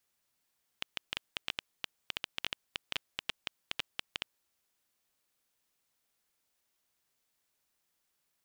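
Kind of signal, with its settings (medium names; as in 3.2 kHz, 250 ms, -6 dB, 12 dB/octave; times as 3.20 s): random clicks 8.2 per s -15 dBFS 3.68 s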